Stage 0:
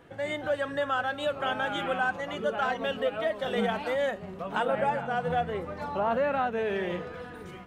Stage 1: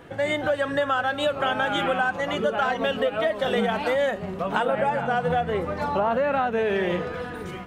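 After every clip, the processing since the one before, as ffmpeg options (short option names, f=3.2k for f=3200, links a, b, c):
-af "acompressor=threshold=-28dB:ratio=6,volume=8.5dB"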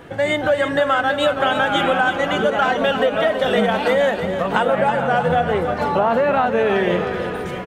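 -af "aecho=1:1:324|648|972|1296|1620|1944:0.355|0.181|0.0923|0.0471|0.024|0.0122,volume=5.5dB"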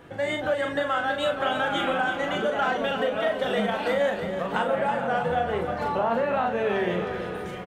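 -filter_complex "[0:a]asplit=2[a][b];[b]adelay=39,volume=-5.5dB[c];[a][c]amix=inputs=2:normalize=0,volume=-8.5dB"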